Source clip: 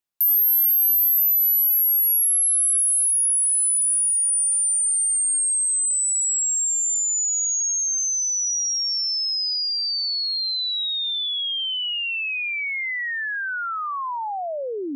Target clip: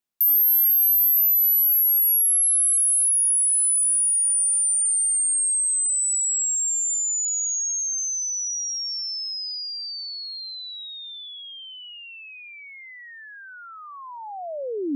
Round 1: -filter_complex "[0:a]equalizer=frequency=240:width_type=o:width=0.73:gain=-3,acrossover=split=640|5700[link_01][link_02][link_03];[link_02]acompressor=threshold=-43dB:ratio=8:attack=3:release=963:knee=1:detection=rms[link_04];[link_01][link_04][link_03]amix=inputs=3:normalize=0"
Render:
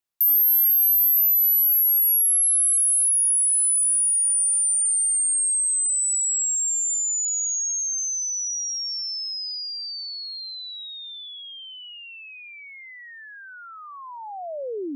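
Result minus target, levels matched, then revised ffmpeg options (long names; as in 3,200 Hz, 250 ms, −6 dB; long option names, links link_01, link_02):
250 Hz band −4.5 dB
-filter_complex "[0:a]equalizer=frequency=240:width_type=o:width=0.73:gain=6,acrossover=split=640|5700[link_01][link_02][link_03];[link_02]acompressor=threshold=-43dB:ratio=8:attack=3:release=963:knee=1:detection=rms[link_04];[link_01][link_04][link_03]amix=inputs=3:normalize=0"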